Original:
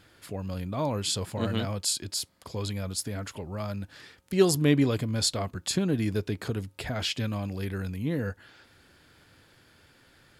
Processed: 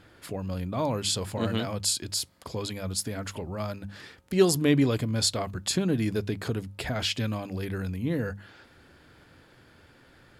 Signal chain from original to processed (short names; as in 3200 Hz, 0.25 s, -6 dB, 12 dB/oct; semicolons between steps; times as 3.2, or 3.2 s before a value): in parallel at -2 dB: compressor, threshold -40 dBFS, peak gain reduction 22.5 dB; on the sum: notches 50/100/150/200 Hz; mismatched tape noise reduction decoder only